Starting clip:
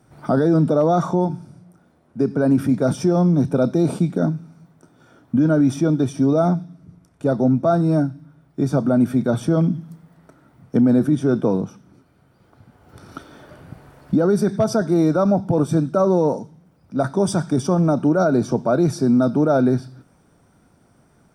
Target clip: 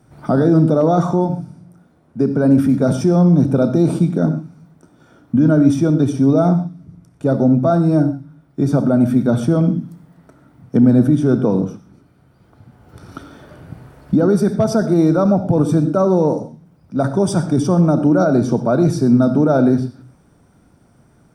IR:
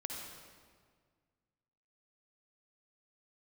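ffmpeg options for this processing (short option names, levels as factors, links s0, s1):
-filter_complex "[0:a]asplit=2[s0][s1];[1:a]atrim=start_sample=2205,atrim=end_sample=6174,lowshelf=f=360:g=9[s2];[s1][s2]afir=irnorm=-1:irlink=0,volume=0.708[s3];[s0][s3]amix=inputs=2:normalize=0,volume=0.75"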